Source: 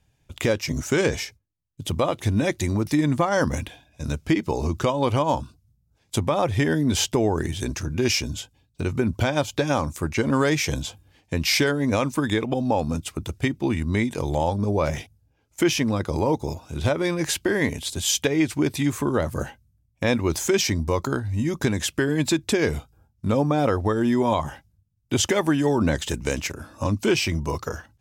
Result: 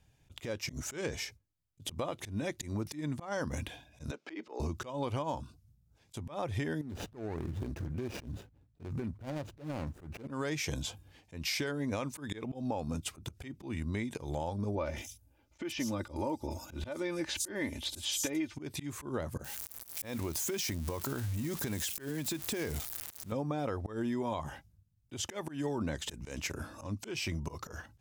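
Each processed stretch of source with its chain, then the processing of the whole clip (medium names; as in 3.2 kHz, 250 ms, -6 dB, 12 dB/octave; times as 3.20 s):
4.11–4.60 s: high-pass 300 Hz 24 dB/octave + compression 2:1, threshold -27 dBFS + distance through air 150 m
6.81–10.28 s: median filter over 41 samples + compression 12:1, threshold -30 dBFS
14.75–18.57 s: treble shelf 9.1 kHz +3.5 dB + comb 3.4 ms, depth 58% + bands offset in time lows, highs 110 ms, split 5.2 kHz
19.44–23.32 s: zero-crossing glitches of -21.5 dBFS + compression, threshold -28 dBFS
whole clip: compression 8:1, threshold -30 dBFS; slow attack 124 ms; trim -1.5 dB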